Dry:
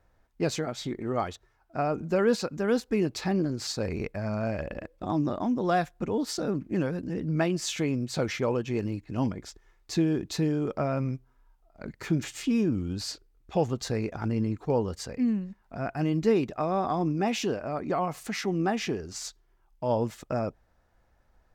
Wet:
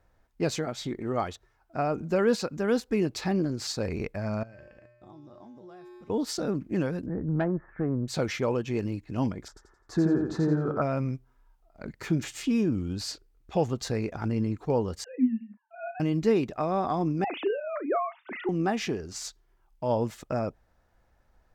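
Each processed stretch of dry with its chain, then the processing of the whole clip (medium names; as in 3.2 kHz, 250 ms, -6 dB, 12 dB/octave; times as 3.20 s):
4.43–6.10 s: feedback comb 120 Hz, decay 1.2 s, harmonics odd, mix 90% + compression, threshold -44 dBFS
7.06–8.08 s: steep low-pass 1.8 kHz 72 dB/octave + bass shelf 78 Hz +10.5 dB + valve stage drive 19 dB, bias 0.45
9.48–10.82 s: low-pass that closes with the level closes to 2 kHz, closed at -21.5 dBFS + resonant high shelf 1.9 kHz -9 dB, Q 3 + feedback delay 86 ms, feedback 34%, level -4 dB
15.04–16.00 s: formants replaced by sine waves + brick-wall FIR high-pass 200 Hz + doubling 35 ms -9 dB
17.24–18.49 s: formants replaced by sine waves + Bessel high-pass 240 Hz + doubling 35 ms -14 dB
whole clip: none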